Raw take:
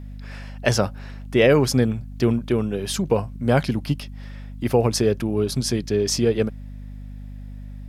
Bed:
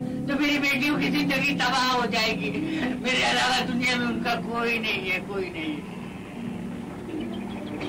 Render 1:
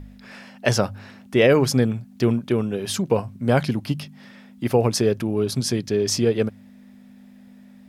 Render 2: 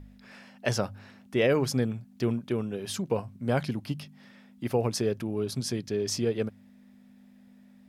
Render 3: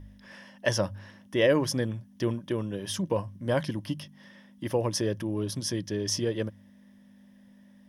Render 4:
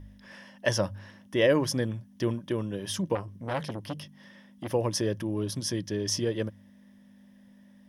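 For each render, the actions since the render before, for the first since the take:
hum removal 50 Hz, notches 3
level −8 dB
EQ curve with evenly spaced ripples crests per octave 1.2, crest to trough 9 dB
0:03.15–0:04.69: saturating transformer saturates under 1,500 Hz

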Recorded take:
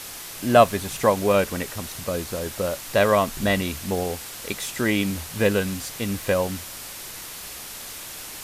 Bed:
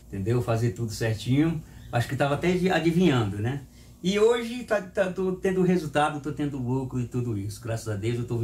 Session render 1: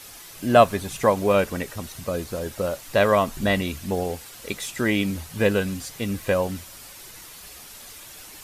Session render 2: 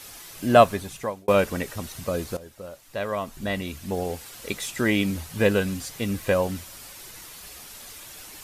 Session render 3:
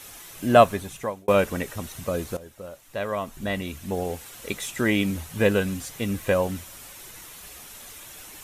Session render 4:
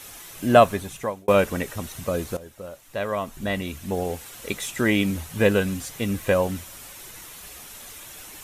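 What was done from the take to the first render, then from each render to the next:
broadband denoise 8 dB, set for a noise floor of −38 dBFS
0:00.60–0:01.28: fade out; 0:02.37–0:04.30: fade in quadratic, from −14 dB
parametric band 4,700 Hz −6 dB 0.33 octaves
level +1.5 dB; brickwall limiter −3 dBFS, peak gain reduction 2.5 dB

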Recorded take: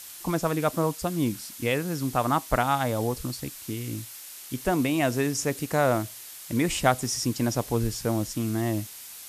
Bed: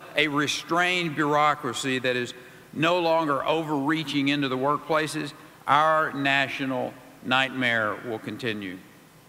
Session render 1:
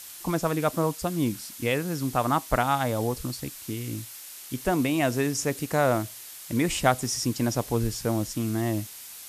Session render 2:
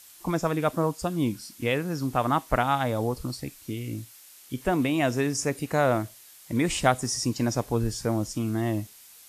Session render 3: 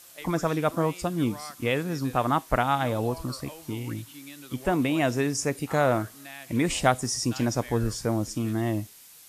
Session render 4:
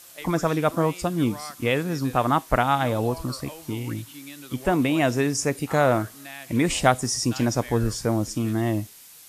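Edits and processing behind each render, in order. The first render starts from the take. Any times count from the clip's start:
no processing that can be heard
noise reduction from a noise print 8 dB
mix in bed −21 dB
level +3 dB

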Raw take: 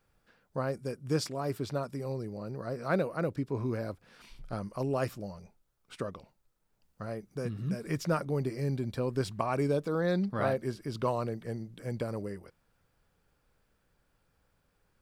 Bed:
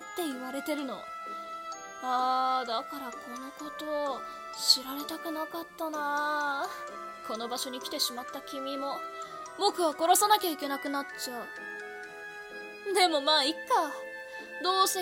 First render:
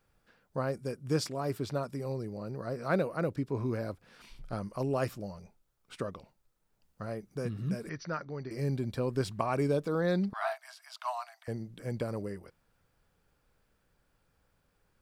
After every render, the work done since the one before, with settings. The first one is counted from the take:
0:07.89–0:08.51: Chebyshev low-pass with heavy ripple 6,100 Hz, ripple 9 dB
0:10.33–0:11.48: Chebyshev high-pass filter 640 Hz, order 10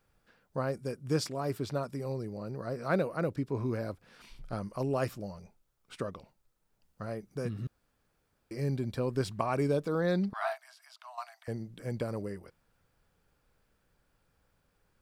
0:07.67–0:08.51: fill with room tone
0:10.61–0:11.18: downward compressor 2 to 1, threshold −57 dBFS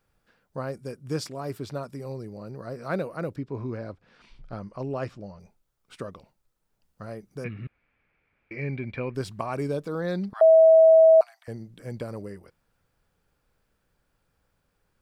0:03.37–0:05.40: high-frequency loss of the air 110 metres
0:07.44–0:09.15: low-pass with resonance 2,300 Hz, resonance Q 7.4
0:10.41–0:11.21: beep over 646 Hz −11 dBFS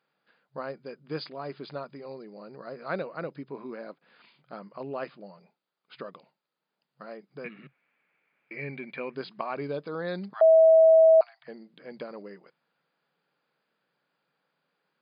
brick-wall band-pass 130–5,000 Hz
low-shelf EQ 340 Hz −9.5 dB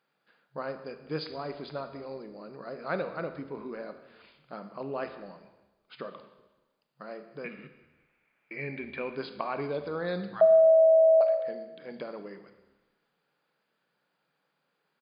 echo with shifted repeats 188 ms, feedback 39%, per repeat −60 Hz, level −23 dB
four-comb reverb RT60 1.1 s, combs from 26 ms, DRR 8.5 dB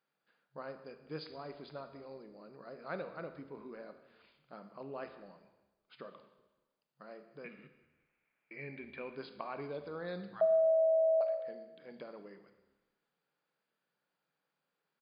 level −9 dB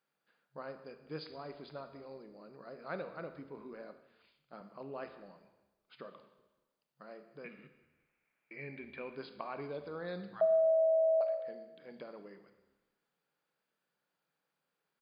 0:03.73–0:04.61: multiband upward and downward expander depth 40%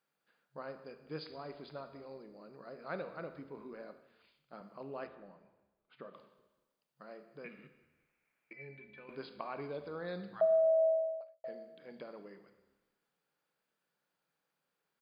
0:05.07–0:06.14: high-frequency loss of the air 320 metres
0:08.53–0:09.09: stiff-string resonator 63 Hz, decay 0.28 s, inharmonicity 0.03
0:10.87–0:11.44: fade out quadratic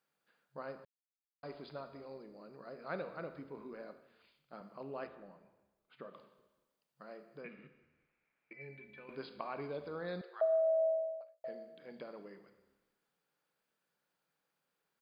0:00.85–0:01.43: silence
0:07.41–0:08.61: high-frequency loss of the air 130 metres
0:10.21–0:11.41: Chebyshev high-pass with heavy ripple 350 Hz, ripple 3 dB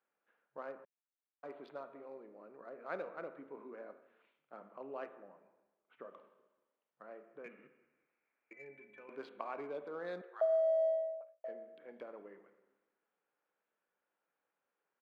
adaptive Wiener filter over 9 samples
three-way crossover with the lows and the highs turned down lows −22 dB, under 240 Hz, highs −12 dB, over 4,100 Hz

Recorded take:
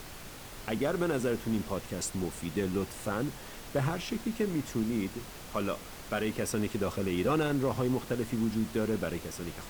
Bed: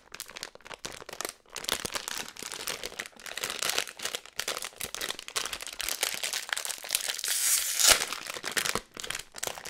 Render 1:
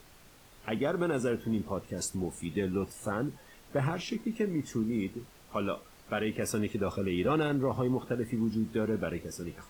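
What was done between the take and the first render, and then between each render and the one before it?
noise reduction from a noise print 11 dB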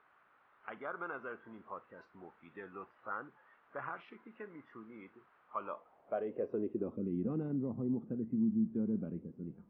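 Gaussian smoothing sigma 3 samples
band-pass filter sweep 1,300 Hz → 210 Hz, 0:05.43–0:07.18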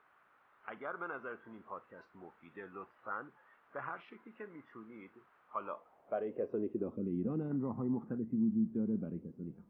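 0:07.51–0:08.18: flat-topped bell 1,300 Hz +11 dB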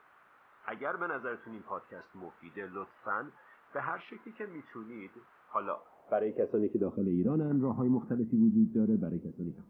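level +6.5 dB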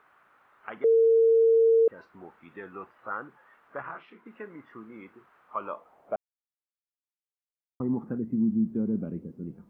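0:00.84–0:01.88: beep over 454 Hz −16.5 dBFS
0:03.82–0:04.26: micro pitch shift up and down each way 55 cents
0:06.16–0:07.80: silence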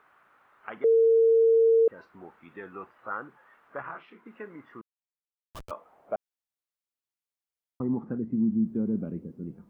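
0:04.81–0:05.71: comparator with hysteresis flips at −30.5 dBFS
0:07.88–0:08.63: high-frequency loss of the air 73 metres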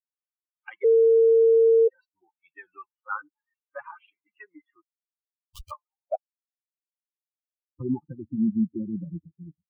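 spectral dynamics exaggerated over time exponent 3
in parallel at +1 dB: brickwall limiter −25.5 dBFS, peak gain reduction 8.5 dB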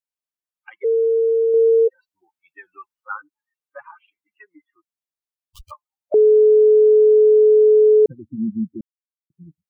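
0:01.54–0:03.12: clip gain +3.5 dB
0:06.14–0:08.06: beep over 428 Hz −8.5 dBFS
0:08.81–0:09.30: silence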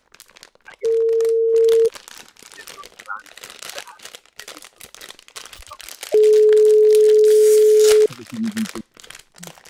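mix in bed −4 dB

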